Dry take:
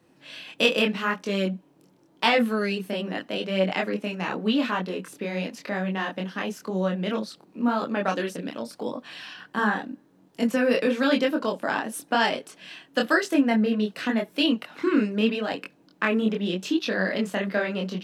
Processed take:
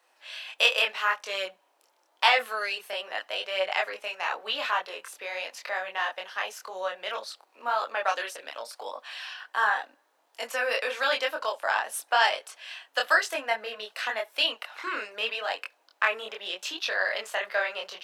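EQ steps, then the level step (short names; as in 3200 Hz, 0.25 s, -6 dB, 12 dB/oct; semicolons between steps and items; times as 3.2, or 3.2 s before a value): HPF 650 Hz 24 dB/oct; +1.5 dB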